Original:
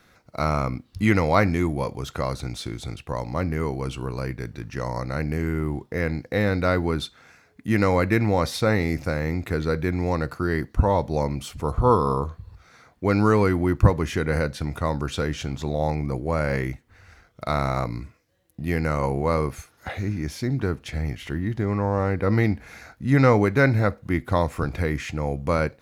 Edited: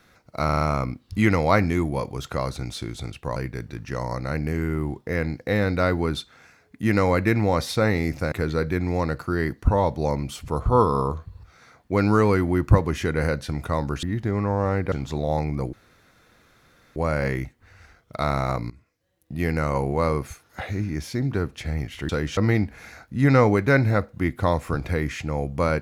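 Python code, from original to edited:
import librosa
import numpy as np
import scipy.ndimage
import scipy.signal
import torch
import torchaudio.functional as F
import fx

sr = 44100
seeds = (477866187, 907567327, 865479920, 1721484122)

y = fx.edit(x, sr, fx.stutter(start_s=0.45, slice_s=0.04, count=5),
    fx.cut(start_s=3.2, length_s=1.01),
    fx.cut(start_s=9.17, length_s=0.27),
    fx.swap(start_s=15.15, length_s=0.28, other_s=21.37, other_length_s=0.89),
    fx.insert_room_tone(at_s=16.24, length_s=1.23),
    fx.fade_in_from(start_s=17.98, length_s=0.71, floor_db=-16.0), tone=tone)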